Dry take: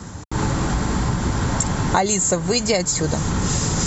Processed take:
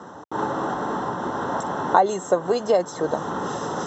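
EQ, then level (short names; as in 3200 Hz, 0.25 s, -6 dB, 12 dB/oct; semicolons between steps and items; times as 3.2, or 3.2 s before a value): running mean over 19 samples; HPF 470 Hz 12 dB/oct; +5.5 dB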